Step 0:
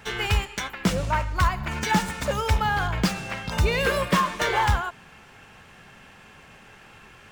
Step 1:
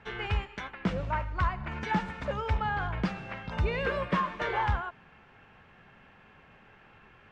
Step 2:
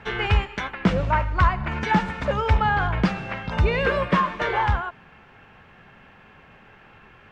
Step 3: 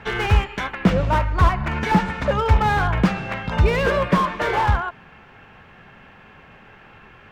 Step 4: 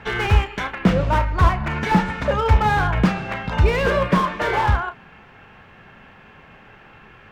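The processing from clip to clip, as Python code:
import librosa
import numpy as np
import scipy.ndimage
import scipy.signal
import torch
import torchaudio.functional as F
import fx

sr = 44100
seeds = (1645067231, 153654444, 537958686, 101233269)

y1 = scipy.signal.sosfilt(scipy.signal.butter(2, 2500.0, 'lowpass', fs=sr, output='sos'), x)
y1 = y1 * 10.0 ** (-6.5 / 20.0)
y2 = fx.rider(y1, sr, range_db=10, speed_s=2.0)
y2 = y2 * 10.0 ** (8.5 / 20.0)
y3 = fx.slew_limit(y2, sr, full_power_hz=100.0)
y3 = y3 * 10.0 ** (3.5 / 20.0)
y4 = fx.doubler(y3, sr, ms=33.0, db=-11.0)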